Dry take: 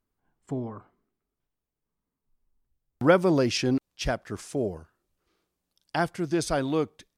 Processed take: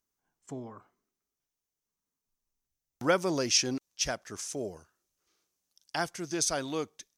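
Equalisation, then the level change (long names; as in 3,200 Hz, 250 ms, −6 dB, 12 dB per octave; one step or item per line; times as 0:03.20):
spectral tilt +2 dB per octave
parametric band 6,100 Hz +10.5 dB 0.45 octaves
−5.0 dB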